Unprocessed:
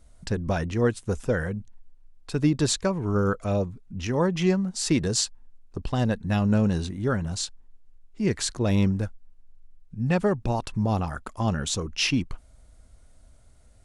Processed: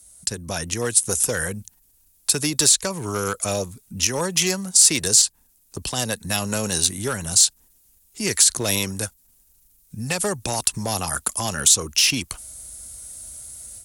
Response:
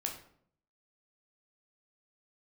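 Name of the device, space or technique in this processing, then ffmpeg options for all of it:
FM broadcast chain: -filter_complex "[0:a]highpass=51,dynaudnorm=framelen=510:gausssize=3:maxgain=11dB,acrossover=split=120|370|3700[link_01][link_02][link_03][link_04];[link_01]acompressor=threshold=-31dB:ratio=4[link_05];[link_02]acompressor=threshold=-29dB:ratio=4[link_06];[link_03]acompressor=threshold=-18dB:ratio=4[link_07];[link_04]acompressor=threshold=-26dB:ratio=4[link_08];[link_05][link_06][link_07][link_08]amix=inputs=4:normalize=0,aemphasis=mode=production:type=75fm,alimiter=limit=-9.5dB:level=0:latency=1:release=92,asoftclip=type=hard:threshold=-13dB,lowpass=frequency=15000:width=0.5412,lowpass=frequency=15000:width=1.3066,aemphasis=mode=production:type=75fm,volume=-3.5dB"

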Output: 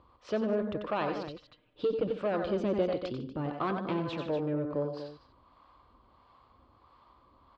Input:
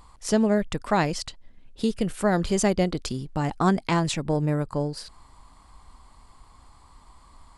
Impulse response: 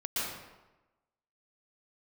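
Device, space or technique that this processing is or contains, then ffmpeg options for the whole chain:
guitar amplifier with harmonic tremolo: -filter_complex "[0:a]asettb=1/sr,asplit=3[link_01][link_02][link_03];[link_01]atrim=end=1.214[link_04];[link_02]atrim=start=1.21:end=2.07,asetpts=PTS-STARTPTS,afade=type=in:duration=0.004:curve=qsin,afade=type=out:start_time=0.856:duration=0.004:curve=qsin,aecho=1:1:6.6:0.99,atrim=end_sample=37926[link_05];[link_03]atrim=start=2.066[link_06];[link_04][link_05]acrossfade=duration=0.004:curve1=hsin:curve2=qsin[link_07];[link_07][link_06]acrossfade=duration=0.004:curve1=qsin:curve2=hsin,aecho=1:1:90|94|151|240:0.299|0.282|0.158|0.237,acrossover=split=530[link_08][link_09];[link_08]aeval=exprs='val(0)*(1-0.5/2+0.5/2*cos(2*PI*1.5*n/s))':channel_layout=same[link_10];[link_09]aeval=exprs='val(0)*(1-0.5/2-0.5/2*cos(2*PI*1.5*n/s))':channel_layout=same[link_11];[link_10][link_11]amix=inputs=2:normalize=0,asoftclip=type=tanh:threshold=-20dB,highpass=87,equalizer=frequency=170:width_type=q:width=4:gain=-7,equalizer=frequency=350:width_type=q:width=4:gain=5,equalizer=frequency=540:width_type=q:width=4:gain=8,equalizer=frequency=820:width_type=q:width=4:gain=-4,equalizer=frequency=1200:width_type=q:width=4:gain=3,equalizer=frequency=2000:width_type=q:width=4:gain=-7,lowpass=frequency=3500:width=0.5412,lowpass=frequency=3500:width=1.3066,volume=-4dB"

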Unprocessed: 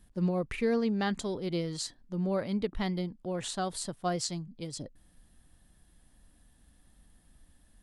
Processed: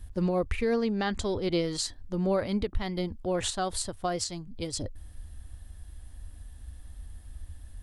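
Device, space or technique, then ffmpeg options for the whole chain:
car stereo with a boomy subwoofer: -filter_complex "[0:a]lowshelf=frequency=110:width_type=q:width=3:gain=9.5,alimiter=level_in=2dB:limit=-24dB:level=0:latency=1:release=288,volume=-2dB,asettb=1/sr,asplit=3[link_01][link_02][link_03];[link_01]atrim=end=0.894[link_04];[link_02]atrim=start=0.89:end=1.64,asetpts=PTS-STARTPTS,afade=type=in:duration=0.004:curve=qsin,afade=type=out:start_time=0.746:duration=0.004:curve=qsin,lowpass=8200[link_05];[link_03]atrim=start=1.636[link_06];[link_04][link_05]acrossfade=duration=0.004:curve1=hsin:curve2=qsin[link_07];[link_07][link_06]acrossfade=duration=0.004:curve1=qsin:curve2=hsin,volume=7dB"

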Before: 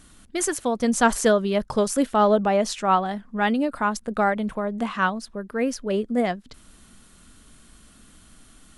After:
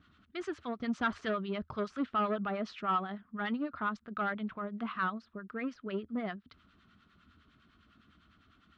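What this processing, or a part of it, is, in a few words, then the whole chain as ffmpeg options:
guitar amplifier with harmonic tremolo: -filter_complex "[0:a]acrossover=split=880[link_01][link_02];[link_01]aeval=exprs='val(0)*(1-0.7/2+0.7/2*cos(2*PI*9.9*n/s))':channel_layout=same[link_03];[link_02]aeval=exprs='val(0)*(1-0.7/2-0.7/2*cos(2*PI*9.9*n/s))':channel_layout=same[link_04];[link_03][link_04]amix=inputs=2:normalize=0,asoftclip=type=tanh:threshold=-17.5dB,highpass=79,equalizer=frequency=81:width_type=q:width=4:gain=9,equalizer=frequency=520:width_type=q:width=4:gain=-9,equalizer=frequency=840:width_type=q:width=4:gain=-6,equalizer=frequency=1300:width_type=q:width=4:gain=8,lowpass=frequency=3800:width=0.5412,lowpass=frequency=3800:width=1.3066,volume=-7dB"

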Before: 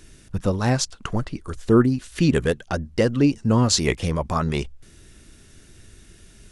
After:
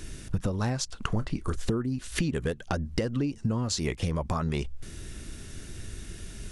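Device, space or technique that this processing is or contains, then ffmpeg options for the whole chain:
serial compression, leveller first: -filter_complex "[0:a]acompressor=threshold=-27dB:ratio=1.5,acompressor=threshold=-32dB:ratio=10,lowshelf=frequency=190:gain=3.5,asettb=1/sr,asplit=3[link_01][link_02][link_03];[link_01]atrim=end=1.074[link_04];[link_02]atrim=start=1.07:end=1.56,asetpts=PTS-STARTPTS,afade=type=in:duration=0.004:curve=qsin,afade=type=out:start_time=0.486:duration=0.004:curve=qsin,asplit=2[link_05][link_06];[link_06]adelay=28,volume=-12.5dB[link_07];[link_05][link_07]amix=inputs=2:normalize=0,atrim=end_sample=21609[link_08];[link_03]atrim=start=1.556[link_09];[link_04][link_08]acrossfade=duration=0.004:curve1=hsin:curve2=qsin[link_10];[link_10][link_09]acrossfade=duration=0.004:curve1=qsin:curve2=hsin,volume=5.5dB"

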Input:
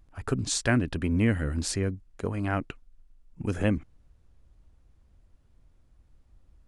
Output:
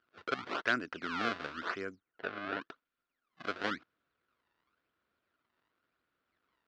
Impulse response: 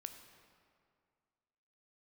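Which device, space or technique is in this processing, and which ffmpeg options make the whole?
circuit-bent sampling toy: -filter_complex "[0:a]acrusher=samples=27:mix=1:aa=0.000001:lfo=1:lforange=43.2:lforate=0.94,highpass=450,equalizer=frequency=550:width_type=q:width=4:gain=-4,equalizer=frequency=830:width_type=q:width=4:gain=-8,equalizer=frequency=1400:width_type=q:width=4:gain=9,lowpass=frequency=4400:width=0.5412,lowpass=frequency=4400:width=1.3066,asplit=3[link_01][link_02][link_03];[link_01]afade=type=out:start_time=1.95:duration=0.02[link_04];[link_02]lowpass=3000,afade=type=in:start_time=1.95:duration=0.02,afade=type=out:start_time=2.6:duration=0.02[link_05];[link_03]afade=type=in:start_time=2.6:duration=0.02[link_06];[link_04][link_05][link_06]amix=inputs=3:normalize=0,volume=-4dB"

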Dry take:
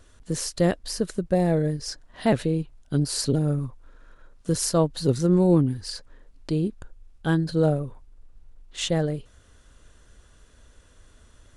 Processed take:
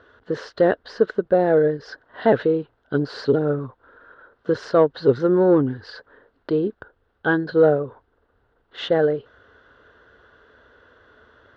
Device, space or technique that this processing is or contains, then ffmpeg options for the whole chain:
overdrive pedal into a guitar cabinet: -filter_complex "[0:a]asplit=2[link_01][link_02];[link_02]highpass=frequency=720:poles=1,volume=12dB,asoftclip=type=tanh:threshold=-8dB[link_03];[link_01][link_03]amix=inputs=2:normalize=0,lowpass=frequency=1400:poles=1,volume=-6dB,highpass=86,equalizer=frequency=170:width_type=q:width=4:gain=-8,equalizer=frequency=440:width_type=q:width=4:gain=7,equalizer=frequency=1500:width_type=q:width=4:gain=8,equalizer=frequency=2400:width_type=q:width=4:gain=-10,lowpass=frequency=3900:width=0.5412,lowpass=frequency=3900:width=1.3066,volume=3dB"

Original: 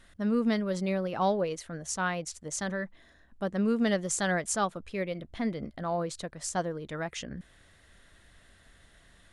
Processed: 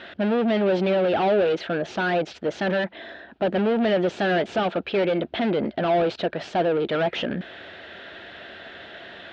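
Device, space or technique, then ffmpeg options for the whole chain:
overdrive pedal into a guitar cabinet: -filter_complex "[0:a]asplit=2[link_01][link_02];[link_02]highpass=frequency=720:poles=1,volume=32dB,asoftclip=type=tanh:threshold=-15.5dB[link_03];[link_01][link_03]amix=inputs=2:normalize=0,lowpass=frequency=4800:poles=1,volume=-6dB,highpass=83,equalizer=frequency=140:width_type=q:width=4:gain=-5,equalizer=frequency=370:width_type=q:width=4:gain=6,equalizer=frequency=660:width_type=q:width=4:gain=4,equalizer=frequency=1100:width_type=q:width=4:gain=-10,equalizer=frequency=2000:width_type=q:width=4:gain=-7,lowpass=frequency=3400:width=0.5412,lowpass=frequency=3400:width=1.3066"

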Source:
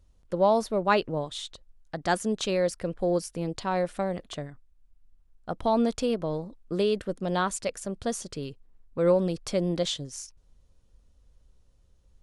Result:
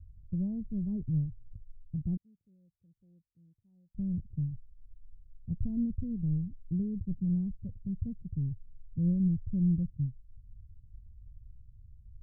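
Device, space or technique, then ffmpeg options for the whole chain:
the neighbour's flat through the wall: -filter_complex "[0:a]lowpass=frequency=160:width=0.5412,lowpass=frequency=160:width=1.3066,equalizer=frequency=94:width_type=o:width=0.64:gain=8,asettb=1/sr,asplit=3[link_01][link_02][link_03];[link_01]atrim=end=2.174[link_04];[link_02]atrim=start=2.17:end=3.95,asetpts=PTS-STARTPTS,afade=type=in:duration=0.004:curve=qsin,afade=type=out:start_time=1.776:duration=0.004:curve=qsin,aderivative[link_05];[link_03]atrim=start=3.946[link_06];[link_04][link_05]acrossfade=duration=0.004:curve1=hsin:curve2=qsin[link_07];[link_07][link_06]acrossfade=duration=0.004:curve1=qsin:curve2=hsin,volume=8dB"

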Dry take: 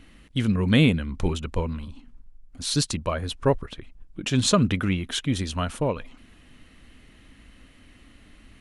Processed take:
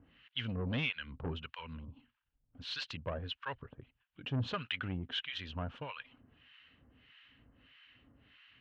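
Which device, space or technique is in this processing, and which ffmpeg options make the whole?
guitar amplifier with harmonic tremolo: -filter_complex "[0:a]acrossover=split=1000[link_01][link_02];[link_01]aeval=exprs='val(0)*(1-1/2+1/2*cos(2*PI*1.6*n/s))':channel_layout=same[link_03];[link_02]aeval=exprs='val(0)*(1-1/2-1/2*cos(2*PI*1.6*n/s))':channel_layout=same[link_04];[link_03][link_04]amix=inputs=2:normalize=0,asoftclip=type=tanh:threshold=-22.5dB,highpass=90,equalizer=frequency=120:width_type=q:width=4:gain=4,equalizer=frequency=200:width_type=q:width=4:gain=-8,equalizer=frequency=340:width_type=q:width=4:gain=-7,equalizer=frequency=650:width_type=q:width=4:gain=-3,equalizer=frequency=1600:width_type=q:width=4:gain=5,equalizer=frequency=2900:width_type=q:width=4:gain=9,lowpass=frequency=3800:width=0.5412,lowpass=frequency=3800:width=1.3066,volume=-5.5dB"

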